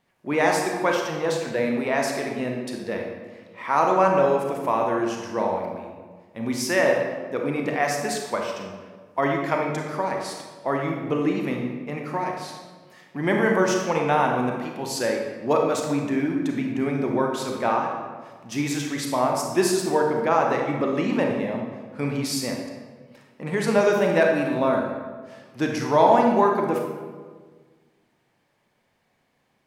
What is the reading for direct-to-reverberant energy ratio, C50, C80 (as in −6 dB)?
1.0 dB, 2.5 dB, 5.0 dB